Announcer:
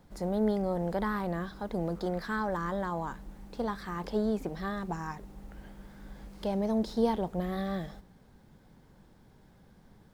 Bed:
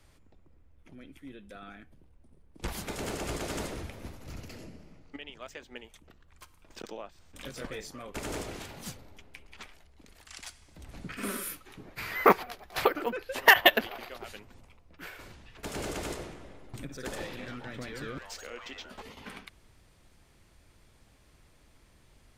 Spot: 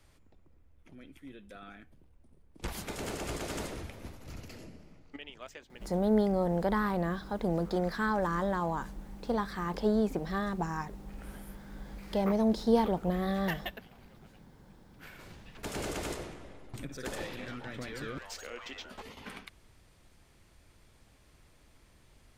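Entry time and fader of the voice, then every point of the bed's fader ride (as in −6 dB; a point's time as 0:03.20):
5.70 s, +2.0 dB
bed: 0:05.47 −2 dB
0:06.37 −20 dB
0:14.48 −20 dB
0:15.35 −0.5 dB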